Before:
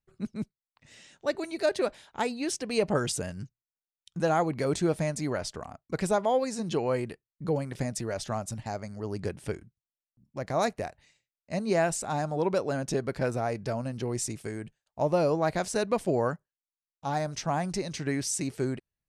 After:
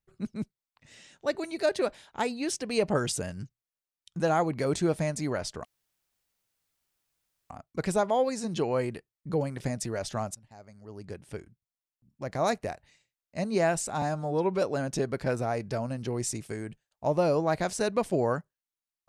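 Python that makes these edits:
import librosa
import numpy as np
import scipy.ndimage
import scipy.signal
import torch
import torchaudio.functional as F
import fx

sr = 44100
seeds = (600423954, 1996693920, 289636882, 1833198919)

y = fx.edit(x, sr, fx.insert_room_tone(at_s=5.65, length_s=1.85),
    fx.fade_in_from(start_s=8.5, length_s=2.07, floor_db=-23.5),
    fx.stretch_span(start_s=12.17, length_s=0.4, factor=1.5), tone=tone)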